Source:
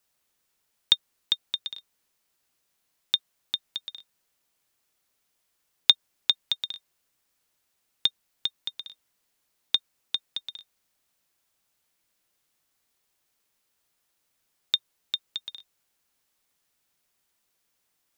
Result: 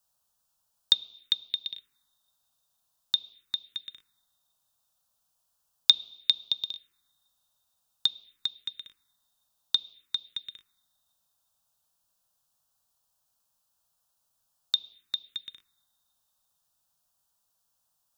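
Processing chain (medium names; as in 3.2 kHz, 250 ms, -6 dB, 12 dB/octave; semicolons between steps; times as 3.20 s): two-slope reverb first 0.88 s, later 3 s, from -20 dB, DRR 18 dB; touch-sensitive phaser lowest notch 360 Hz, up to 1.8 kHz, full sweep at -29.5 dBFS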